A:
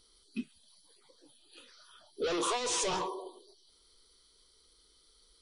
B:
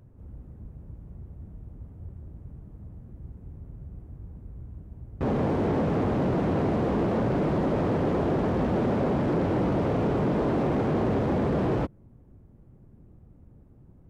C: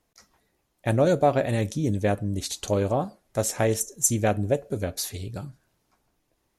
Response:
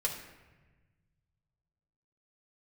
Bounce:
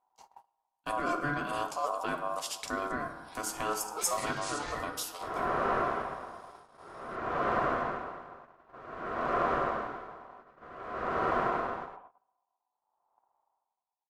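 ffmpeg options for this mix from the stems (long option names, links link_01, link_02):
-filter_complex "[0:a]aeval=exprs='val(0)+0.000891*(sin(2*PI*50*n/s)+sin(2*PI*2*50*n/s)/2+sin(2*PI*3*50*n/s)/3+sin(2*PI*4*50*n/s)/4+sin(2*PI*5*50*n/s)/5)':channel_layout=same,adelay=1750,volume=0dB,asplit=2[link_01][link_02];[link_02]volume=-14dB[link_03];[1:a]aeval=exprs='val(0)*pow(10,-25*(0.5-0.5*cos(2*PI*0.53*n/s))/20)':channel_layout=same,volume=-5dB,asplit=3[link_04][link_05][link_06];[link_05]volume=-6dB[link_07];[link_06]volume=-3dB[link_08];[2:a]highpass=160,volume=-2dB,asplit=2[link_09][link_10];[link_10]volume=-10dB[link_11];[link_01][link_09]amix=inputs=2:normalize=0,acrossover=split=490[link_12][link_13];[link_13]acompressor=threshold=-38dB:ratio=2.5[link_14];[link_12][link_14]amix=inputs=2:normalize=0,alimiter=limit=-20dB:level=0:latency=1:release=332,volume=0dB[link_15];[3:a]atrim=start_sample=2205[link_16];[link_03][link_07][link_11]amix=inputs=3:normalize=0[link_17];[link_17][link_16]afir=irnorm=-1:irlink=0[link_18];[link_08]aecho=0:1:102:1[link_19];[link_04][link_15][link_18][link_19]amix=inputs=4:normalize=0,agate=range=-21dB:threshold=-47dB:ratio=16:detection=peak,aeval=exprs='val(0)*sin(2*PI*870*n/s)':channel_layout=same"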